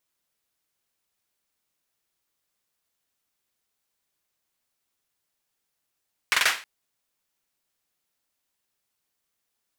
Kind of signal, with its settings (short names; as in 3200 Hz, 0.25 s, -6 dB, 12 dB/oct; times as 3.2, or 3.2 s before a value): hand clap length 0.32 s, bursts 4, apart 45 ms, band 1900 Hz, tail 0.34 s